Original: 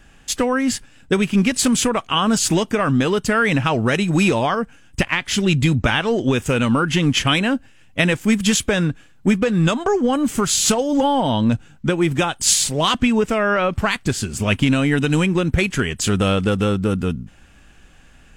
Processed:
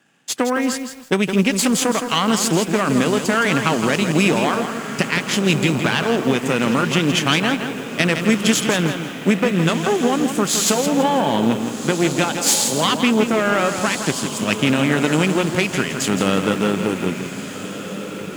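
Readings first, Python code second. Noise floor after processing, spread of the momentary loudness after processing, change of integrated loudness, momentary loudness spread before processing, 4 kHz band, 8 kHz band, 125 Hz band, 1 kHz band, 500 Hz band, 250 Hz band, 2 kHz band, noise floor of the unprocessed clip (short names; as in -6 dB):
-30 dBFS, 7 LU, 0.0 dB, 6 LU, +0.5 dB, 0.0 dB, -3.0 dB, +1.0 dB, +1.0 dB, 0.0 dB, +1.0 dB, -48 dBFS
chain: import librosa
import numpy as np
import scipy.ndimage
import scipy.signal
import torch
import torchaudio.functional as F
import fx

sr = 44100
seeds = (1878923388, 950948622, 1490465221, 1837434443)

y = fx.law_mismatch(x, sr, coded='A')
y = fx.echo_diffused(y, sr, ms=1497, feedback_pct=51, wet_db=-10)
y = fx.cheby_harmonics(y, sr, harmonics=(4,), levels_db=(-15,), full_scale_db=-2.0)
y = scipy.signal.sosfilt(scipy.signal.butter(4, 150.0, 'highpass', fs=sr, output='sos'), y)
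y = fx.echo_crushed(y, sr, ms=165, feedback_pct=35, bits=6, wet_db=-7.5)
y = F.gain(torch.from_numpy(y), -1.0).numpy()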